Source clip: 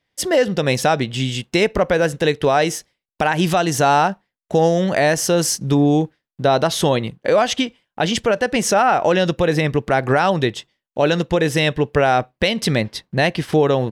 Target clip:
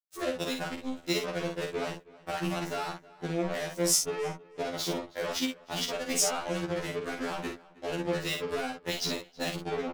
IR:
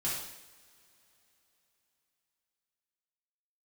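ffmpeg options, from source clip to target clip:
-filter_complex "[0:a]afwtdn=0.0447,highpass=78,bass=f=250:g=-9,treble=f=4000:g=8,acrossover=split=270|3800[s0][s1][s2];[s1]acompressor=threshold=0.0631:ratio=8[s3];[s0][s3][s2]amix=inputs=3:normalize=0,atempo=1.4,acrusher=bits=3:mix=0:aa=0.5,asplit=2[s4][s5];[s5]adelay=50,volume=0.531[s6];[s4][s6]amix=inputs=2:normalize=0,asplit=2[s7][s8];[s8]adelay=320,lowpass=f=3000:p=1,volume=0.0944,asplit=2[s9][s10];[s10]adelay=320,lowpass=f=3000:p=1,volume=0.2[s11];[s9][s11]amix=inputs=2:normalize=0[s12];[s7][s12]amix=inputs=2:normalize=0,afftfilt=real='re*2*eq(mod(b,4),0)':imag='im*2*eq(mod(b,4),0)':win_size=2048:overlap=0.75,volume=0.447"

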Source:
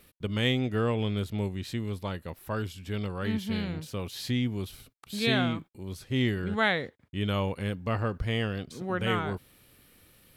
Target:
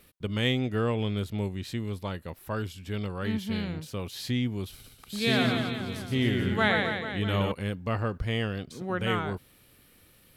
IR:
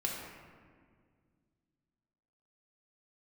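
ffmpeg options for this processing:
-filter_complex "[0:a]asettb=1/sr,asplit=3[s0][s1][s2];[s0]atrim=end=4.724[s3];[s1]atrim=start=4.72:end=7.52,asetpts=PTS-STARTPTS,afade=t=in:d=0.004:c=qsin,afade=t=out:st=2.796:d=0.004:c=qsin,aecho=1:1:120|264|436.8|644.2|893:0.631|0.398|0.251|0.158|0.1,atrim=end_sample=123480[s4];[s2]atrim=start=7.516[s5];[s3][s4]acrossfade=d=0.004:c1=hsin:c2=qsin[s6];[s6][s5]acrossfade=d=0.004:c1=qsin:c2=hsin"

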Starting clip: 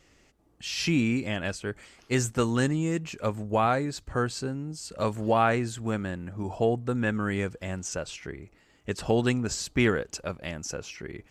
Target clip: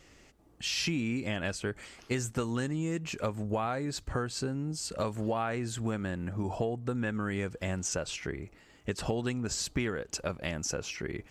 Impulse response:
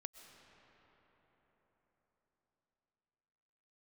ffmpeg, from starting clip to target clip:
-af "acompressor=threshold=0.0251:ratio=6,volume=1.41"

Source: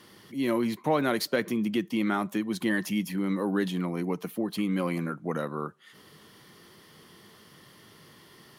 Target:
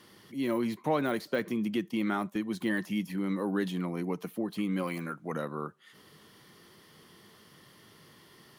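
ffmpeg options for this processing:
-filter_complex "[0:a]asettb=1/sr,asplit=3[s0][s1][s2];[s0]atrim=end=4.834[s3];[s1]atrim=start=4.83:end=5.32,asetpts=PTS-STARTPTS,afade=t=in:d=0.004:c=qsin,afade=t=out:st=0.486:d=0.004:c=qsin,tiltshelf=f=860:g=-4[s4];[s2]atrim=start=5.316[s5];[s3][s4]acrossfade=d=0.004:c1=hsin:c2=qsin[s6];[s6][s5]acrossfade=d=0.004:c1=qsin:c2=hsin,deesser=0.9,asplit=3[s7][s8][s9];[s7]afade=t=out:st=1.9:d=0.02[s10];[s8]agate=range=0.398:threshold=0.0224:ratio=16:detection=peak,afade=t=in:st=1.9:d=0.02,afade=t=out:st=2.49:d=0.02[s11];[s9]afade=t=in:st=2.49:d=0.02[s12];[s10][s11][s12]amix=inputs=3:normalize=0,volume=0.708"

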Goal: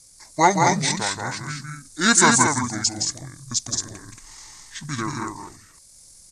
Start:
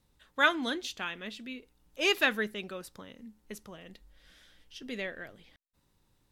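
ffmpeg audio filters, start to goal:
-filter_complex "[0:a]asplit=2[s0][s1];[s1]aecho=0:1:172|221.6:0.562|0.562[s2];[s0][s2]amix=inputs=2:normalize=0,aexciter=amount=6.4:drive=9.5:freq=7400,asetrate=25476,aresample=44100,atempo=1.73107,acontrast=45,volume=1.41"

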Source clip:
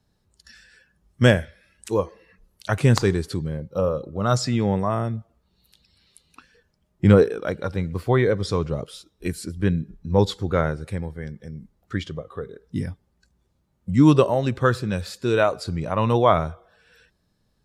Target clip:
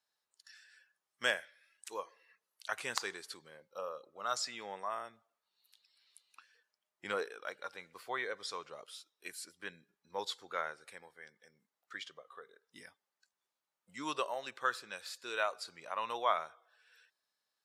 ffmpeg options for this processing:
-af "highpass=1000,volume=0.376"

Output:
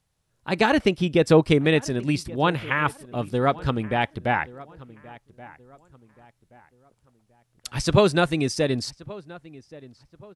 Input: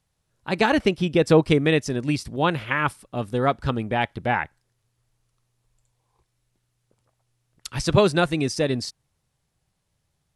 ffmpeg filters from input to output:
-filter_complex "[0:a]asplit=2[s0][s1];[s1]adelay=1127,lowpass=f=2400:p=1,volume=0.1,asplit=2[s2][s3];[s3]adelay=1127,lowpass=f=2400:p=1,volume=0.37,asplit=2[s4][s5];[s5]adelay=1127,lowpass=f=2400:p=1,volume=0.37[s6];[s0][s2][s4][s6]amix=inputs=4:normalize=0"

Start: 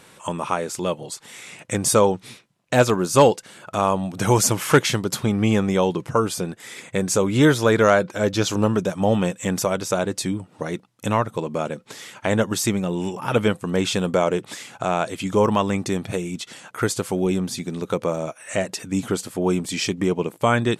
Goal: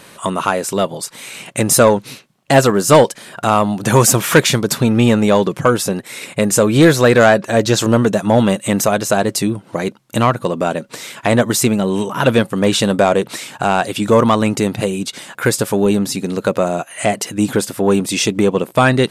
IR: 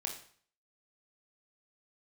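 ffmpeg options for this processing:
-af "acontrast=81,asetrate=48000,aresample=44100,volume=1.12"

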